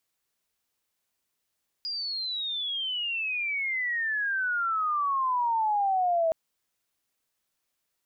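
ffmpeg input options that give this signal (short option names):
-f lavfi -i "aevalsrc='pow(10,(-30+8.5*t/4.47)/20)*sin(2*PI*4900*4.47/log(640/4900)*(exp(log(640/4900)*t/4.47)-1))':d=4.47:s=44100"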